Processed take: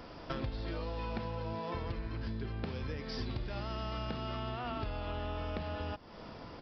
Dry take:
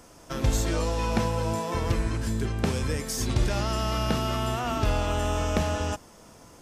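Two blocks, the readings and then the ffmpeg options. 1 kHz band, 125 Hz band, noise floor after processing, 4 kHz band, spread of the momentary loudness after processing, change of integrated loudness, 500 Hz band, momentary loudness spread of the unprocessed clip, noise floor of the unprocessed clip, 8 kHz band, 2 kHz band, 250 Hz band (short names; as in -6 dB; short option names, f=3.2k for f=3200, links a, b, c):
-11.0 dB, -12.0 dB, -50 dBFS, -11.5 dB, 2 LU, -12.0 dB, -11.0 dB, 3 LU, -51 dBFS, under -30 dB, -11.0 dB, -11.5 dB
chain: -af "aresample=11025,aresample=44100,acompressor=threshold=-39dB:ratio=8,volume=3.5dB"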